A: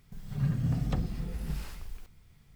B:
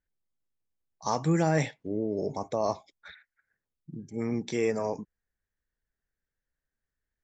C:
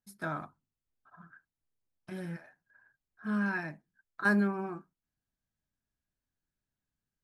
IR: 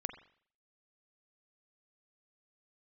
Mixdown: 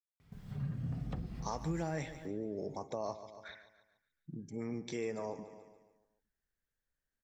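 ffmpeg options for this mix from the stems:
-filter_complex "[0:a]highpass=48,highshelf=f=4700:g=-11,adelay=200,volume=0.794[s0];[1:a]adelay=400,volume=0.75,asplit=2[s1][s2];[s2]volume=0.168,aecho=0:1:143|286|429|572|715|858:1|0.45|0.202|0.0911|0.041|0.0185[s3];[s0][s1][s3]amix=inputs=3:normalize=0,acompressor=threshold=0.00891:ratio=2"

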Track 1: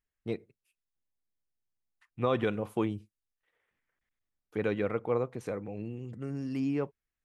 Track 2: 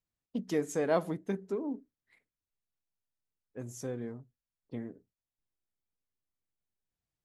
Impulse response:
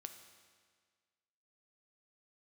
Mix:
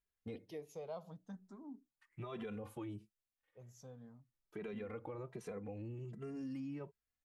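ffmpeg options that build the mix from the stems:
-filter_complex "[0:a]alimiter=level_in=1.58:limit=0.0631:level=0:latency=1:release=37,volume=0.631,asplit=2[s0][s1];[s1]adelay=2.6,afreqshift=1.3[s2];[s0][s2]amix=inputs=2:normalize=1,volume=0.794[s3];[1:a]asplit=2[s4][s5];[s5]afreqshift=0.36[s6];[s4][s6]amix=inputs=2:normalize=1,volume=0.237[s7];[s3][s7]amix=inputs=2:normalize=0,acompressor=threshold=0.00891:ratio=6"

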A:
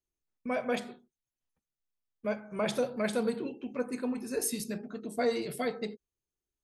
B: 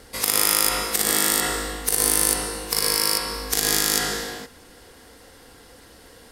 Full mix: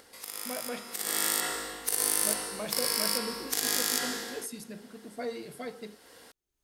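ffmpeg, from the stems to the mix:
-filter_complex "[0:a]volume=0.447[s0];[1:a]highpass=f=370:p=1,volume=0.422,afade=t=in:st=0.84:d=0.4:silence=0.266073[s1];[s0][s1]amix=inputs=2:normalize=0,acompressor=mode=upward:threshold=0.00501:ratio=2.5"

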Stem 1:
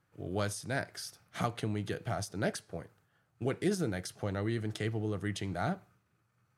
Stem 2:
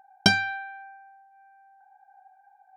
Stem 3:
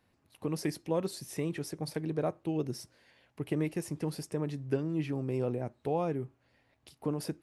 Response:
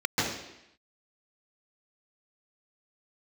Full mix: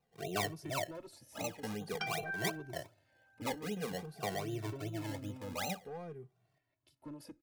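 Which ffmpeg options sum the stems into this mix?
-filter_complex "[0:a]lowpass=f=700:t=q:w=4.9,acrusher=samples=25:mix=1:aa=0.000001:lfo=1:lforange=25:lforate=2.6,volume=0.794[s0];[1:a]bandpass=f=1500:t=q:w=5.2:csg=0,adelay=1750,volume=1.26[s1];[2:a]asoftclip=type=hard:threshold=0.0473,volume=0.282,asplit=2[s2][s3];[s3]apad=whole_len=290002[s4];[s0][s4]sidechaincompress=threshold=0.00501:ratio=8:attack=37:release=417[s5];[s5][s1][s2]amix=inputs=3:normalize=0,afftfilt=real='re*lt(hypot(re,im),0.224)':imag='im*lt(hypot(re,im),0.224)':win_size=1024:overlap=0.75,asplit=2[s6][s7];[s7]adelay=2.1,afreqshift=-0.5[s8];[s6][s8]amix=inputs=2:normalize=1"

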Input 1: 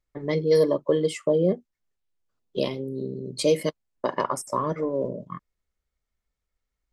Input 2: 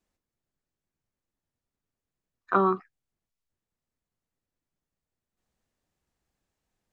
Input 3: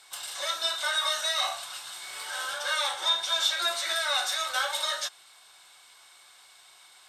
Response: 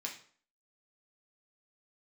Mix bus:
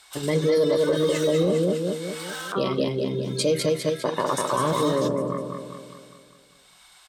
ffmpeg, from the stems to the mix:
-filter_complex "[0:a]highpass=49,lowshelf=f=65:g=10,volume=0.794,asplit=2[s0][s1];[s1]volume=0.631[s2];[1:a]alimiter=limit=0.0944:level=0:latency=1,volume=0.531,asplit=2[s3][s4];[2:a]alimiter=level_in=1.06:limit=0.0631:level=0:latency=1:release=52,volume=0.944,tremolo=f=0.86:d=0.49,volume=42.2,asoftclip=hard,volume=0.0237,volume=0.668[s5];[s4]apad=whole_len=312363[s6];[s5][s6]sidechaincompress=threshold=0.00251:ratio=8:attack=34:release=1300[s7];[s2]aecho=0:1:201|402|603|804|1005|1206|1407|1608:1|0.53|0.281|0.149|0.0789|0.0418|0.0222|0.0117[s8];[s0][s3][s7][s8]amix=inputs=4:normalize=0,acontrast=33,alimiter=limit=0.211:level=0:latency=1:release=53"

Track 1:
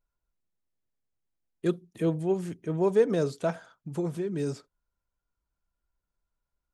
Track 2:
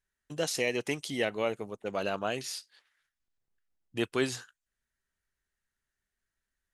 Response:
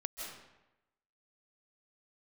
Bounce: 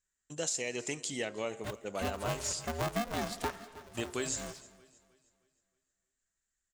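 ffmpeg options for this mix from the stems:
-filter_complex "[0:a]highpass=f=1200:p=1,dynaudnorm=f=250:g=11:m=3.98,aeval=exprs='val(0)*sgn(sin(2*PI*240*n/s))':c=same,volume=0.501,afade=t=in:st=1.78:d=0.5:silence=0.375837,afade=t=out:st=3.37:d=0.24:silence=0.375837,asplit=3[s0][s1][s2];[s1]volume=0.112[s3];[s2]volume=0.0944[s4];[1:a]lowpass=f=7400:t=q:w=8.6,bandreject=f=89.48:t=h:w=4,bandreject=f=178.96:t=h:w=4,bandreject=f=268.44:t=h:w=4,bandreject=f=357.92:t=h:w=4,bandreject=f=447.4:t=h:w=4,bandreject=f=536.88:t=h:w=4,bandreject=f=626.36:t=h:w=4,bandreject=f=715.84:t=h:w=4,bandreject=f=805.32:t=h:w=4,bandreject=f=894.8:t=h:w=4,bandreject=f=984.28:t=h:w=4,bandreject=f=1073.76:t=h:w=4,bandreject=f=1163.24:t=h:w=4,bandreject=f=1252.72:t=h:w=4,bandreject=f=1342.2:t=h:w=4,bandreject=f=1431.68:t=h:w=4,bandreject=f=1521.16:t=h:w=4,bandreject=f=1610.64:t=h:w=4,volume=0.562,asplit=3[s5][s6][s7];[s6]volume=0.106[s8];[s7]volume=0.0708[s9];[2:a]atrim=start_sample=2205[s10];[s3][s8]amix=inputs=2:normalize=0[s11];[s11][s10]afir=irnorm=-1:irlink=0[s12];[s4][s9]amix=inputs=2:normalize=0,aecho=0:1:313|626|939|1252|1565|1878:1|0.4|0.16|0.064|0.0256|0.0102[s13];[s0][s5][s12][s13]amix=inputs=4:normalize=0,acompressor=threshold=0.0316:ratio=10"

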